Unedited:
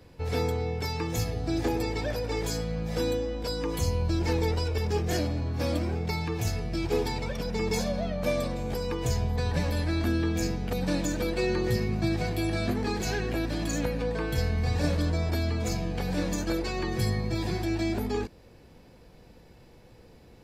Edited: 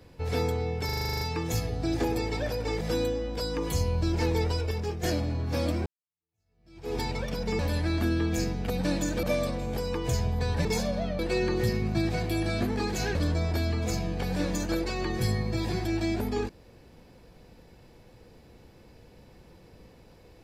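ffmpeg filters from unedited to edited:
ffmpeg -i in.wav -filter_complex "[0:a]asplit=18[link_01][link_02][link_03][link_04][link_05][link_06][link_07][link_08][link_09][link_10][link_11][link_12][link_13][link_14][link_15][link_16][link_17][link_18];[link_01]atrim=end=0.892[link_19];[link_02]atrim=start=0.848:end=0.892[link_20];[link_03]atrim=start=0.848:end=0.892[link_21];[link_04]atrim=start=0.848:end=0.892[link_22];[link_05]atrim=start=0.848:end=0.892[link_23];[link_06]atrim=start=0.848:end=0.892[link_24];[link_07]atrim=start=0.848:end=0.892[link_25];[link_08]atrim=start=0.848:end=0.892[link_26];[link_09]atrim=start=0.848:end=0.892[link_27];[link_10]atrim=start=0.848:end=2.452[link_28];[link_11]atrim=start=2.878:end=5.1,asetpts=PTS-STARTPTS,afade=type=out:start_time=1.762:duration=0.46:silence=0.398107[link_29];[link_12]atrim=start=5.1:end=5.93,asetpts=PTS-STARTPTS,afade=type=in:duration=0.004:curve=hsin:silence=0.398107,afade=type=out:start_time=0.826:duration=0.004:curve=hsin[link_30];[link_13]atrim=start=5.93:end=7.662,asetpts=PTS-STARTPTS,afade=type=in:duration=1.12:curve=exp[link_31];[link_14]atrim=start=9.618:end=11.262[link_32];[link_15]atrim=start=8.198:end=9.622[link_33];[link_16]atrim=start=7.658:end=8.202[link_34];[link_17]atrim=start=11.258:end=13.222[link_35];[link_18]atrim=start=14.928[link_36];[link_19][link_20]acrossfade=duration=0.004:curve1=hsin:curve2=hsin[link_37];[link_37][link_21]acrossfade=duration=0.004:curve1=hsin:curve2=hsin[link_38];[link_38][link_22]acrossfade=duration=0.004:curve1=hsin:curve2=hsin[link_39];[link_39][link_23]acrossfade=duration=0.004:curve1=hsin:curve2=hsin[link_40];[link_40][link_24]acrossfade=duration=0.004:curve1=hsin:curve2=hsin[link_41];[link_41][link_25]acrossfade=duration=0.004:curve1=hsin:curve2=hsin[link_42];[link_42][link_26]acrossfade=duration=0.004:curve1=hsin:curve2=hsin[link_43];[link_43][link_27]acrossfade=duration=0.004:curve1=hsin:curve2=hsin[link_44];[link_44][link_28]acrossfade=duration=0.004:curve1=hsin:curve2=hsin[link_45];[link_29][link_30][link_31]concat=n=3:v=0:a=1[link_46];[link_45][link_46]acrossfade=duration=0.004:curve1=hsin:curve2=hsin[link_47];[link_47][link_32]acrossfade=duration=0.004:curve1=hsin:curve2=hsin[link_48];[link_48][link_33]acrossfade=duration=0.004:curve1=hsin:curve2=hsin[link_49];[link_49][link_34]acrossfade=duration=0.004:curve1=hsin:curve2=hsin[link_50];[link_50][link_35]acrossfade=duration=0.004:curve1=hsin:curve2=hsin[link_51];[link_51][link_36]acrossfade=duration=0.004:curve1=hsin:curve2=hsin" out.wav

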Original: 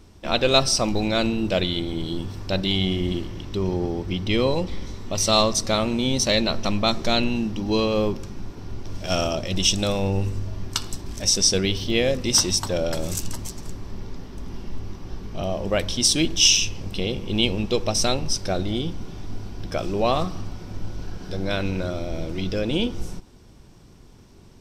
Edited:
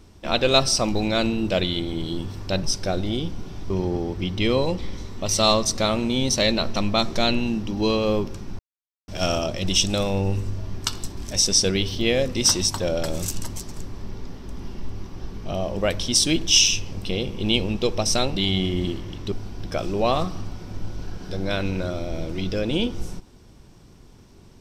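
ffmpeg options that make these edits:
ffmpeg -i in.wav -filter_complex "[0:a]asplit=7[link_01][link_02][link_03][link_04][link_05][link_06][link_07];[link_01]atrim=end=2.632[link_08];[link_02]atrim=start=18.248:end=19.322[link_09];[link_03]atrim=start=3.588:end=8.48,asetpts=PTS-STARTPTS,afade=type=out:start_time=4.888:duration=0.004:curve=hsin[link_10];[link_04]atrim=start=8.48:end=8.97,asetpts=PTS-STARTPTS,volume=0[link_11];[link_05]atrim=start=8.97:end=18.252,asetpts=PTS-STARTPTS,afade=type=in:duration=0.004:curve=hsin[link_12];[link_06]atrim=start=2.628:end=3.592[link_13];[link_07]atrim=start=19.318[link_14];[link_08][link_09]acrossfade=duration=0.004:curve1=hsin:curve2=hsin[link_15];[link_10][link_11][link_12]concat=n=3:v=0:a=1[link_16];[link_15][link_16]acrossfade=duration=0.004:curve1=hsin:curve2=hsin[link_17];[link_17][link_13]acrossfade=duration=0.004:curve1=hsin:curve2=hsin[link_18];[link_18][link_14]acrossfade=duration=0.004:curve1=hsin:curve2=hsin" out.wav

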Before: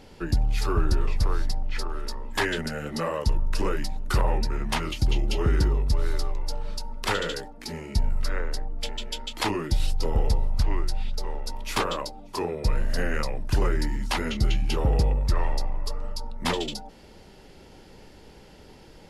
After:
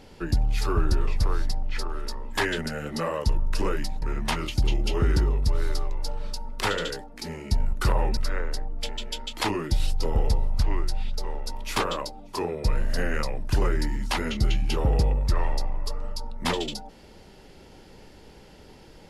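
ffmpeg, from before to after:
ffmpeg -i in.wav -filter_complex "[0:a]asplit=4[link_01][link_02][link_03][link_04];[link_01]atrim=end=4.022[link_05];[link_02]atrim=start=4.458:end=8.172[link_06];[link_03]atrim=start=4.018:end=4.462[link_07];[link_04]atrim=start=8.168[link_08];[link_05][link_06]acrossfade=duration=0.004:curve1=hsin:curve2=hsin[link_09];[link_09][link_07]acrossfade=duration=0.004:curve1=hsin:curve2=hsin[link_10];[link_10][link_08]acrossfade=duration=0.004:curve1=hsin:curve2=hsin" out.wav

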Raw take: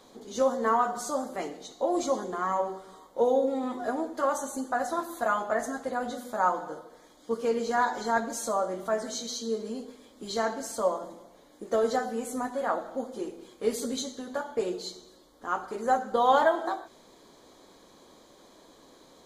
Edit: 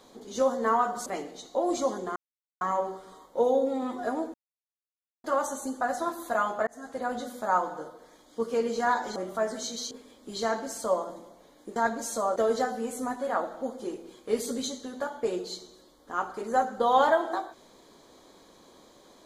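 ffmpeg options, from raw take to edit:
ffmpeg -i in.wav -filter_complex "[0:a]asplit=9[link_01][link_02][link_03][link_04][link_05][link_06][link_07][link_08][link_09];[link_01]atrim=end=1.062[link_10];[link_02]atrim=start=1.318:end=2.42,asetpts=PTS-STARTPTS,afade=type=out:start_time=1.098:duration=0.004:curve=hsin,apad=pad_dur=0.45[link_11];[link_03]atrim=start=2.42:end=4.15,asetpts=PTS-STARTPTS,afade=type=in:duration=0.004:curve=hsin,afade=type=out:start_time=1.726:duration=0.004:curve=hsin,apad=pad_dur=0.9[link_12];[link_04]atrim=start=4.15:end=5.58,asetpts=PTS-STARTPTS,afade=type=in:duration=0.004:curve=hsin,afade=type=out:start_time=1.426:duration=0.004:curve=hsin[link_13];[link_05]atrim=start=5.58:end=8.072,asetpts=PTS-STARTPTS,afade=type=in:duration=0.38[link_14];[link_06]atrim=start=8.668:end=9.422[link_15];[link_07]atrim=start=9.848:end=11.702[link_16];[link_08]atrim=start=8.068:end=8.672[link_17];[link_09]atrim=start=11.698[link_18];[link_11][link_12][link_13][link_14]concat=n=4:v=0:a=1[link_19];[link_10][link_19]acrossfade=duration=0.004:curve1=hsin:curve2=hsin[link_20];[link_20][link_15]acrossfade=duration=0.004:curve1=hsin:curve2=hsin[link_21];[link_21][link_16]acrossfade=duration=0.004:curve1=hsin:curve2=hsin[link_22];[link_22][link_17]acrossfade=duration=0.004:curve1=hsin:curve2=hsin[link_23];[link_23][link_18]acrossfade=duration=0.004:curve1=hsin:curve2=hsin" out.wav

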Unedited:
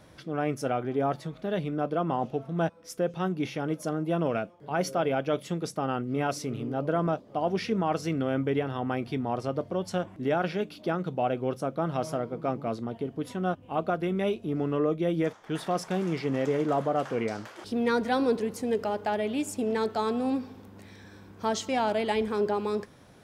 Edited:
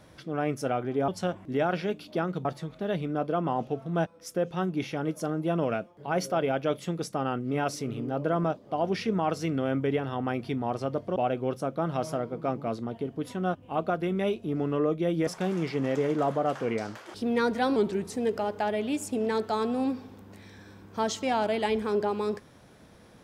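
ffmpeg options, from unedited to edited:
ffmpeg -i in.wav -filter_complex "[0:a]asplit=7[link_01][link_02][link_03][link_04][link_05][link_06][link_07];[link_01]atrim=end=1.082[link_08];[link_02]atrim=start=9.788:end=11.162[link_09];[link_03]atrim=start=1.078:end=9.792[link_10];[link_04]atrim=start=11.158:end=15.272[link_11];[link_05]atrim=start=15.768:end=18.264[link_12];[link_06]atrim=start=18.26:end=18.59,asetpts=PTS-STARTPTS,asetrate=39249,aresample=44100[link_13];[link_07]atrim=start=18.586[link_14];[link_08][link_09]acrossfade=duration=0.004:curve1=hsin:curve2=hsin[link_15];[link_15][link_10]acrossfade=duration=0.004:curve1=hsin:curve2=hsin[link_16];[link_16][link_11]acrossfade=duration=0.004:curve1=hsin:curve2=hsin[link_17];[link_17][link_12]acrossfade=duration=0.004:curve1=hsin:curve2=hsin[link_18];[link_18][link_13]acrossfade=duration=0.004:curve1=hsin:curve2=hsin[link_19];[link_19][link_14]acrossfade=duration=0.004:curve1=hsin:curve2=hsin" out.wav

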